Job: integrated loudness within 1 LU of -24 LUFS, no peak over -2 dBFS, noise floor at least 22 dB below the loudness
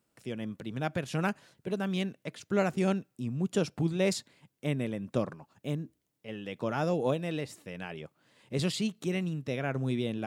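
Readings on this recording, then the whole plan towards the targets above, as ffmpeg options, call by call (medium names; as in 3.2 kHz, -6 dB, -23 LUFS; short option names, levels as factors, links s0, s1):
loudness -33.0 LUFS; peak level -14.5 dBFS; loudness target -24.0 LUFS
-> -af "volume=2.82"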